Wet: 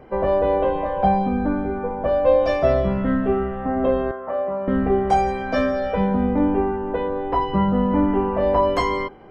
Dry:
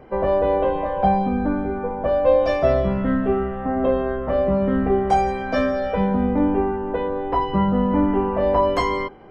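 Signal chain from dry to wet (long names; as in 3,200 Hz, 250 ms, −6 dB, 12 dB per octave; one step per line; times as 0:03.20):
0:04.11–0:04.68: resonant band-pass 960 Hz, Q 1.1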